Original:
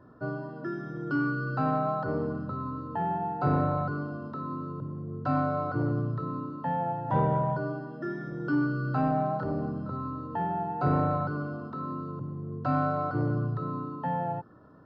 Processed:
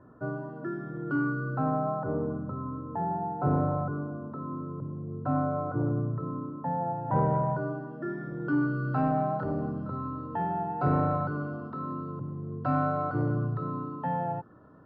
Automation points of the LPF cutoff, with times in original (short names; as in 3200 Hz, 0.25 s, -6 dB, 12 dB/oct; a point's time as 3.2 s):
1.17 s 1900 Hz
1.72 s 1100 Hz
6.77 s 1100 Hz
7.35 s 2000 Hz
8.01 s 2000 Hz
9.03 s 2900 Hz